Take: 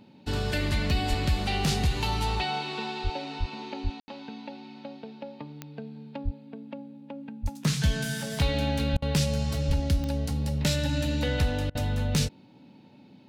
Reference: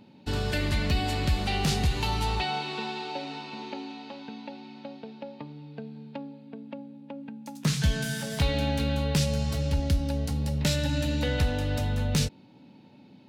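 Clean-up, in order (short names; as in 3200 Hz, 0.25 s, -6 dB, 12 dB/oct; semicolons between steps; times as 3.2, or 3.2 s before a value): de-click; de-plosive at 1.09/3.03/3.39/3.83/6.24/7.42/8.92/9.67; room tone fill 4–4.08; interpolate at 8.97/11.7, 50 ms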